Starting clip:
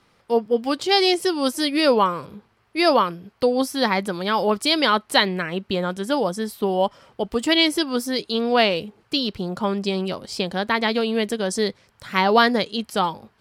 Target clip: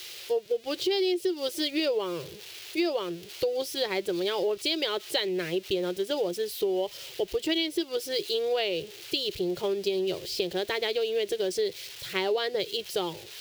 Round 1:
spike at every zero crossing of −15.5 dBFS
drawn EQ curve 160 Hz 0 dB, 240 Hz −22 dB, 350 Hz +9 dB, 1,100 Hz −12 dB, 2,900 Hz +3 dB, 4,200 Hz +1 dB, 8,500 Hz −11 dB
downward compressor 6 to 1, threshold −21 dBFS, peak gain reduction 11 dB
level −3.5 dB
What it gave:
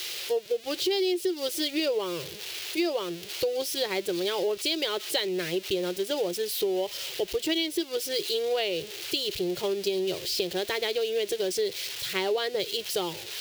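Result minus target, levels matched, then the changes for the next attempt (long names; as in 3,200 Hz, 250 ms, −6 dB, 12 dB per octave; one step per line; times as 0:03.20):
spike at every zero crossing: distortion +7 dB
change: spike at every zero crossing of −22.5 dBFS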